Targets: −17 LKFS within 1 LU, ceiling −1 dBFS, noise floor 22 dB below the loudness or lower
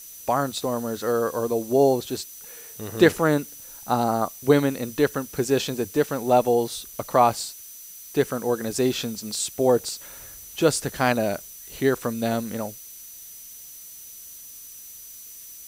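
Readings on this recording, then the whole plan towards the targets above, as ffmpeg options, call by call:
interfering tone 6,000 Hz; level of the tone −46 dBFS; background noise floor −43 dBFS; target noise floor −46 dBFS; integrated loudness −24.0 LKFS; sample peak −3.0 dBFS; target loudness −17.0 LKFS
→ -af "bandreject=frequency=6000:width=30"
-af "afftdn=noise_reduction=6:noise_floor=-43"
-af "volume=7dB,alimiter=limit=-1dB:level=0:latency=1"

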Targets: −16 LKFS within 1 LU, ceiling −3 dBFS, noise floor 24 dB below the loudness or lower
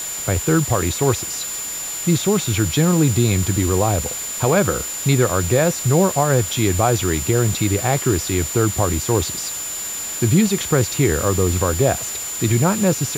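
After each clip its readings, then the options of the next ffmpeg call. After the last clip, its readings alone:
interfering tone 7,100 Hz; level of the tone −26 dBFS; background noise floor −28 dBFS; target noise floor −43 dBFS; integrated loudness −18.5 LKFS; sample peak −3.5 dBFS; target loudness −16.0 LKFS
→ -af "bandreject=frequency=7100:width=30"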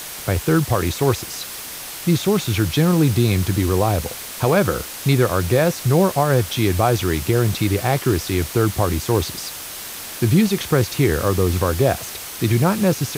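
interfering tone none found; background noise floor −33 dBFS; target noise floor −44 dBFS
→ -af "afftdn=noise_reduction=11:noise_floor=-33"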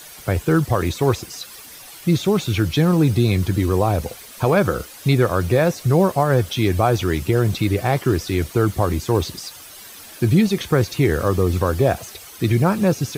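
background noise floor −40 dBFS; target noise floor −44 dBFS
→ -af "afftdn=noise_reduction=6:noise_floor=-40"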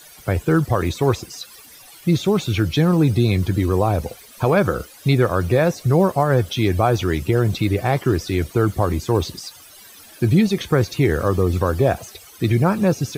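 background noise floor −45 dBFS; integrated loudness −19.5 LKFS; sample peak −4.5 dBFS; target loudness −16.0 LKFS
→ -af "volume=3.5dB,alimiter=limit=-3dB:level=0:latency=1"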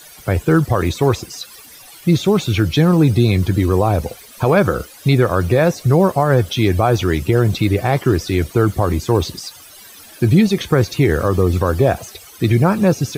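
integrated loudness −16.5 LKFS; sample peak −3.0 dBFS; background noise floor −41 dBFS

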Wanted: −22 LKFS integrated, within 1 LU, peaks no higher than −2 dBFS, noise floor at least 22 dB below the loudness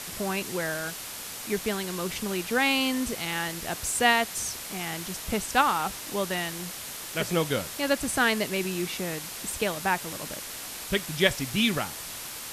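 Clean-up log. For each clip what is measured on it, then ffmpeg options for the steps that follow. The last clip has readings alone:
background noise floor −39 dBFS; target noise floor −50 dBFS; integrated loudness −28.0 LKFS; sample peak −7.5 dBFS; target loudness −22.0 LKFS
→ -af "afftdn=noise_reduction=11:noise_floor=-39"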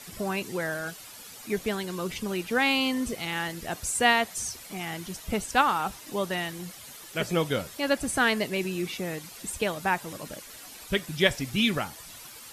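background noise floor −46 dBFS; target noise floor −50 dBFS
→ -af "afftdn=noise_reduction=6:noise_floor=-46"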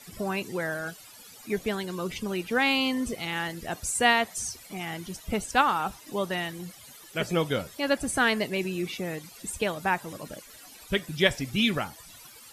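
background noise floor −50 dBFS; target noise floor −51 dBFS
→ -af "afftdn=noise_reduction=6:noise_floor=-50"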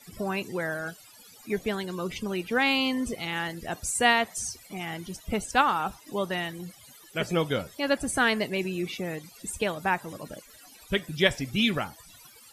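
background noise floor −53 dBFS; integrated loudness −28.5 LKFS; sample peak −7.5 dBFS; target loudness −22.0 LKFS
→ -af "volume=6.5dB,alimiter=limit=-2dB:level=0:latency=1"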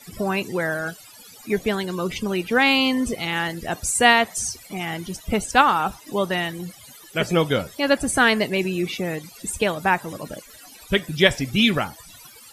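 integrated loudness −22.0 LKFS; sample peak −2.0 dBFS; background noise floor −46 dBFS

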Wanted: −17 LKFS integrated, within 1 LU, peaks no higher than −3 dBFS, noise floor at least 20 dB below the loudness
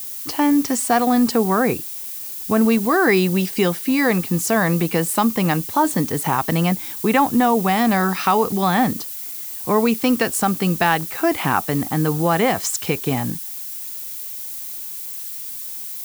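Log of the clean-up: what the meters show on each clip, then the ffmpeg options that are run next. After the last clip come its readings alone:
background noise floor −31 dBFS; target noise floor −40 dBFS; integrated loudness −19.5 LKFS; sample peak −3.5 dBFS; target loudness −17.0 LKFS
→ -af "afftdn=noise_reduction=9:noise_floor=-31"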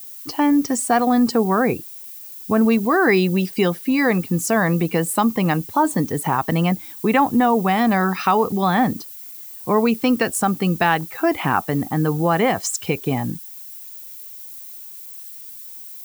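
background noise floor −38 dBFS; target noise floor −40 dBFS
→ -af "afftdn=noise_reduction=6:noise_floor=-38"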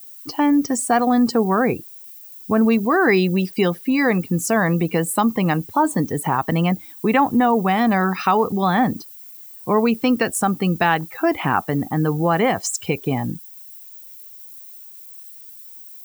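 background noise floor −41 dBFS; integrated loudness −19.5 LKFS; sample peak −4.0 dBFS; target loudness −17.0 LKFS
→ -af "volume=2.5dB,alimiter=limit=-3dB:level=0:latency=1"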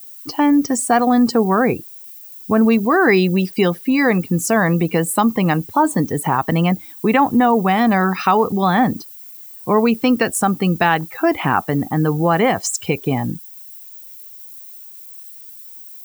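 integrated loudness −17.0 LKFS; sample peak −3.0 dBFS; background noise floor −38 dBFS

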